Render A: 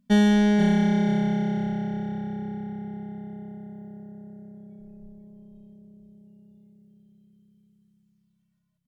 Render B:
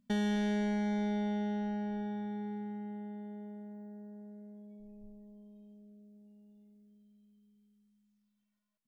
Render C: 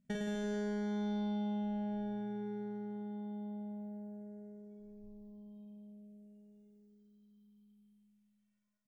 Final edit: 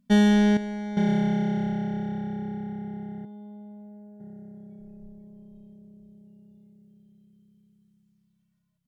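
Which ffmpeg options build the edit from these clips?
ffmpeg -i take0.wav -i take1.wav -i take2.wav -filter_complex "[0:a]asplit=3[link_01][link_02][link_03];[link_01]atrim=end=0.572[link_04];[1:a]atrim=start=0.568:end=0.972[link_05];[link_02]atrim=start=0.968:end=3.252[link_06];[2:a]atrim=start=3.248:end=4.202[link_07];[link_03]atrim=start=4.198[link_08];[link_04][link_05]acrossfade=duration=0.004:curve1=hsin:curve2=hsin[link_09];[link_09][link_06]acrossfade=duration=0.004:curve1=hsin:curve2=hsin[link_10];[link_10][link_07]acrossfade=duration=0.004:curve1=hsin:curve2=hsin[link_11];[link_11][link_08]acrossfade=duration=0.004:curve1=hsin:curve2=hsin" out.wav

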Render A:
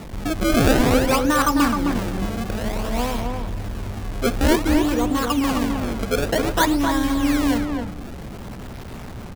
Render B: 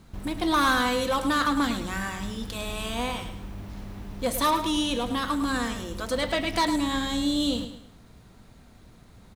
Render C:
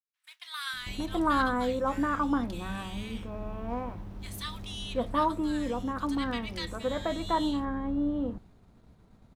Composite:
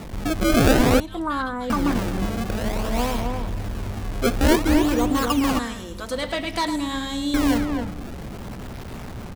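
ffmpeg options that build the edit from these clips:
ffmpeg -i take0.wav -i take1.wav -i take2.wav -filter_complex "[0:a]asplit=3[link_01][link_02][link_03];[link_01]atrim=end=1.002[link_04];[2:a]atrim=start=0.998:end=1.702[link_05];[link_02]atrim=start=1.698:end=5.592[link_06];[1:a]atrim=start=5.588:end=7.342[link_07];[link_03]atrim=start=7.338[link_08];[link_04][link_05]acrossfade=duration=0.004:curve1=hsin:curve2=hsin[link_09];[link_09][link_06]acrossfade=duration=0.004:curve1=hsin:curve2=hsin[link_10];[link_10][link_07]acrossfade=duration=0.004:curve1=hsin:curve2=hsin[link_11];[link_11][link_08]acrossfade=duration=0.004:curve1=hsin:curve2=hsin" out.wav

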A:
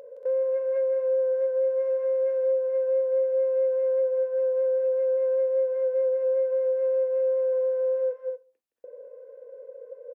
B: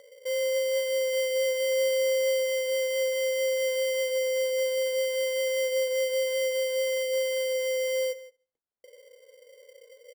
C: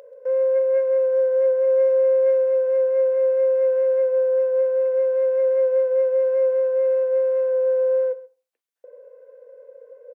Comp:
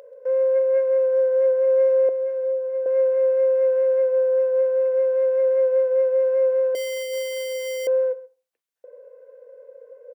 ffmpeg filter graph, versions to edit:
ffmpeg -i take0.wav -i take1.wav -i take2.wav -filter_complex "[2:a]asplit=3[link_01][link_02][link_03];[link_01]atrim=end=2.092[link_04];[0:a]atrim=start=2.088:end=2.862[link_05];[link_02]atrim=start=2.858:end=6.752[link_06];[1:a]atrim=start=6.748:end=7.872[link_07];[link_03]atrim=start=7.868[link_08];[link_04][link_05]acrossfade=duration=0.004:curve1=hsin:curve2=hsin[link_09];[link_09][link_06]acrossfade=duration=0.004:curve1=hsin:curve2=hsin[link_10];[link_10][link_07]acrossfade=duration=0.004:curve1=hsin:curve2=hsin[link_11];[link_11][link_08]acrossfade=duration=0.004:curve1=hsin:curve2=hsin" out.wav

